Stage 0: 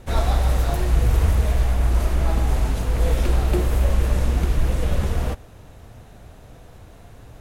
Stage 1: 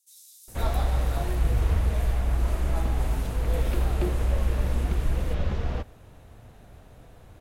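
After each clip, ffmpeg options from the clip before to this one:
-filter_complex "[0:a]acrossover=split=5900[s0][s1];[s0]adelay=480[s2];[s2][s1]amix=inputs=2:normalize=0,volume=0.531"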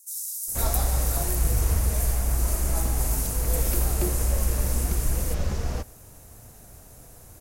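-af "aexciter=amount=6.1:drive=6.4:freq=5000"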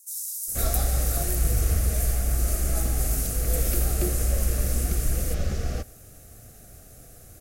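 -af "asuperstop=centerf=950:order=4:qfactor=2.7"

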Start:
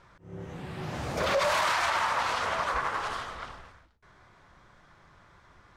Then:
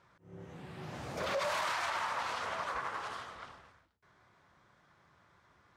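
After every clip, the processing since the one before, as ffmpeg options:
-af "highpass=87,volume=0.398"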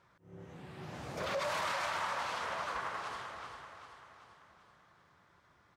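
-af "aecho=1:1:388|776|1164|1552|1940|2328:0.355|0.188|0.0997|0.0528|0.028|0.0148,volume=0.841"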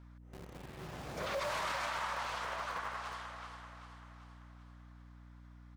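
-filter_complex "[0:a]acrossover=split=450|2200[s0][s1][s2];[s0]acrusher=bits=7:mix=0:aa=0.000001[s3];[s3][s1][s2]amix=inputs=3:normalize=0,aeval=exprs='val(0)+0.00251*(sin(2*PI*60*n/s)+sin(2*PI*2*60*n/s)/2+sin(2*PI*3*60*n/s)/3+sin(2*PI*4*60*n/s)/4+sin(2*PI*5*60*n/s)/5)':c=same,volume=0.841"

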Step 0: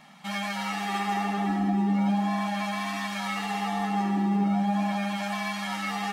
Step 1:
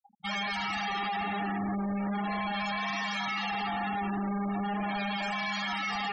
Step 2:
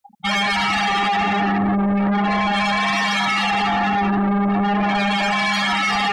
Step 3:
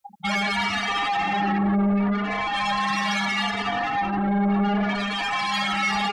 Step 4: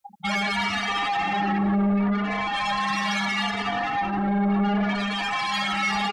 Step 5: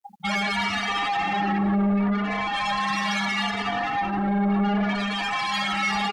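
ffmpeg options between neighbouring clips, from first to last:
-af "tiltshelf=f=740:g=-4.5,volume=53.1,asoftclip=hard,volume=0.0188,afftfilt=real='re*gte(hypot(re,im),0.0158)':imag='im*gte(hypot(re,im),0.0158)':win_size=1024:overlap=0.75,volume=1.68"
-af "aeval=exprs='0.0631*sin(PI/2*1.41*val(0)/0.0631)':c=same,volume=2.51"
-filter_complex "[0:a]alimiter=limit=0.075:level=0:latency=1,asplit=2[s0][s1];[s1]adelay=3.3,afreqshift=0.71[s2];[s0][s2]amix=inputs=2:normalize=1,volume=1.68"
-af "aecho=1:1:299|598|897:0.0891|0.0321|0.0116,volume=0.891"
-af "acrusher=bits=11:mix=0:aa=0.000001"

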